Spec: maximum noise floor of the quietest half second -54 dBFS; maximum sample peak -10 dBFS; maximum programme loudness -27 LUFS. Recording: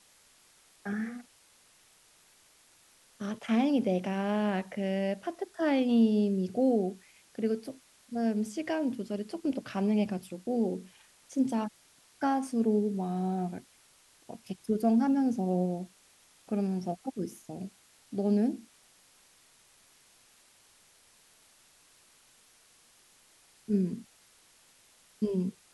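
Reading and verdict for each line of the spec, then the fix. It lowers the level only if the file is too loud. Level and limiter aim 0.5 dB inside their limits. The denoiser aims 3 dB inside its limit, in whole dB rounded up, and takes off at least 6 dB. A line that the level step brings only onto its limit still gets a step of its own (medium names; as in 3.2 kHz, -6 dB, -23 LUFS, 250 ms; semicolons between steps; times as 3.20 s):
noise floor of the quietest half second -62 dBFS: pass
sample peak -15.0 dBFS: pass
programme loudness -31.0 LUFS: pass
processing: none needed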